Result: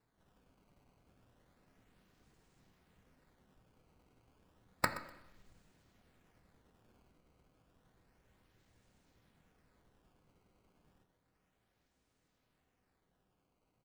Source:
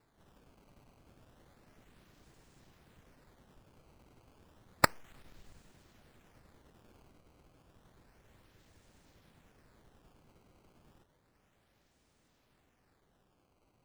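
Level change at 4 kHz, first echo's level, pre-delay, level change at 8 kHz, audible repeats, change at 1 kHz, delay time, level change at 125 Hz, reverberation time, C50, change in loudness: -8.0 dB, -16.5 dB, 3 ms, -8.5 dB, 2, -7.0 dB, 0.124 s, -7.0 dB, 0.80 s, 10.5 dB, -8.0 dB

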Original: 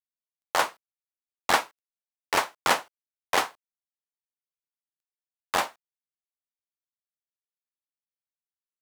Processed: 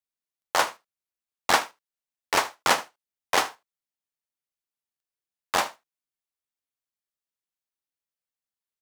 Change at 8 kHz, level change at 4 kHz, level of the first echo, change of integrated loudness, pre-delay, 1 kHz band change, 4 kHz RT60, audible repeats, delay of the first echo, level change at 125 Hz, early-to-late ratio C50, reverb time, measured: +3.0 dB, +2.5 dB, -18.5 dB, +1.5 dB, none, +1.0 dB, none, 1, 77 ms, +1.0 dB, none, none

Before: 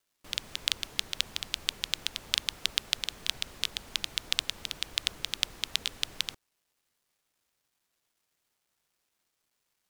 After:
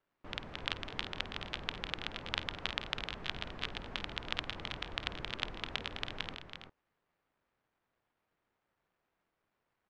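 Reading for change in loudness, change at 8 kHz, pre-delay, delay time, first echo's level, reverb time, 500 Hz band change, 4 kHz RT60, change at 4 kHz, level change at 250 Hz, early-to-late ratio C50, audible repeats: -7.5 dB, -21.5 dB, none, 51 ms, -16.0 dB, none, +4.5 dB, none, -9.5 dB, +4.5 dB, none, 3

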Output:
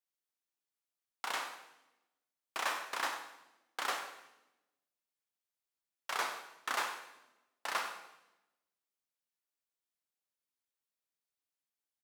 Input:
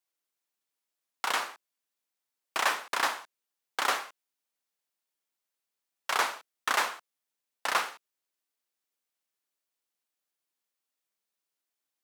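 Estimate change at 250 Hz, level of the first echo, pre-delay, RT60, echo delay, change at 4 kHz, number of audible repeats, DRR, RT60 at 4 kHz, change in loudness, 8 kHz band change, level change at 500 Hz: -7.0 dB, -14.0 dB, 17 ms, 0.95 s, 96 ms, -7.5 dB, 1, 6.0 dB, 0.90 s, -8.0 dB, -7.5 dB, -7.5 dB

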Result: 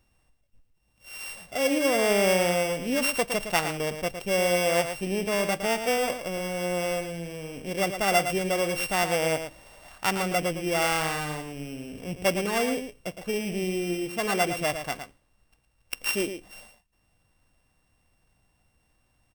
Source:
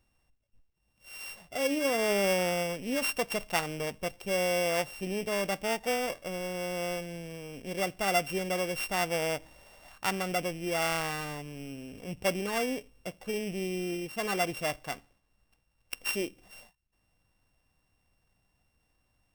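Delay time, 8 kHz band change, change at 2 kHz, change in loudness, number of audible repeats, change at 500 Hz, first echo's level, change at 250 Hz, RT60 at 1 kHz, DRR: 0.112 s, +5.5 dB, +5.0 dB, +5.0 dB, 1, +5.0 dB, -8.5 dB, +5.0 dB, none, none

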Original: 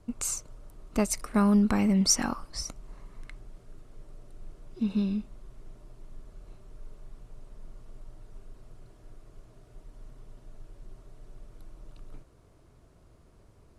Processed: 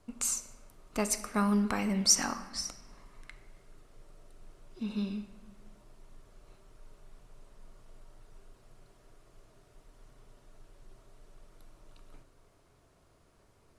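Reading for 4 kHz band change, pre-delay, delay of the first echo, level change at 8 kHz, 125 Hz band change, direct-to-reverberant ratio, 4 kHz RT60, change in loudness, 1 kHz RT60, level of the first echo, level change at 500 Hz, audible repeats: +0.5 dB, 4 ms, none, 0.0 dB, -7.0 dB, 9.0 dB, 0.90 s, -3.5 dB, 1.0 s, none, -4.0 dB, none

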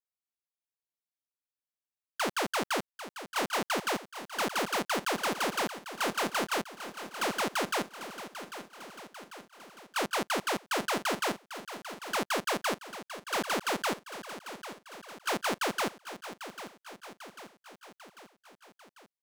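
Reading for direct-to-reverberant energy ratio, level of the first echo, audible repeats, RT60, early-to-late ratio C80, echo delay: none, -12.0 dB, 5, none, none, 0.795 s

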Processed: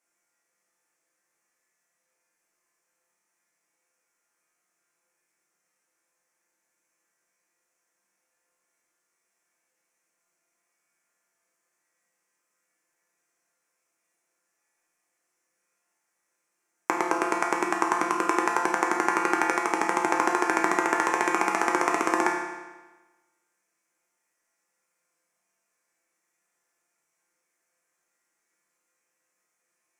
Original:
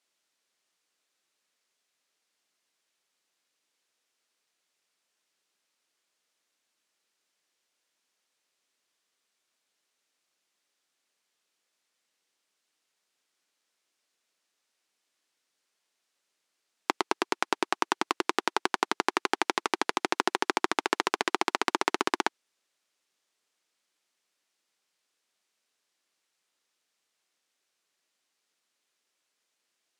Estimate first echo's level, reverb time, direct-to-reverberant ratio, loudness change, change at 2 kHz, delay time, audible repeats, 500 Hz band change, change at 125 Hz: none, 1.2 s, -2.0 dB, +4.0 dB, +4.5 dB, none, none, +4.5 dB, +6.0 dB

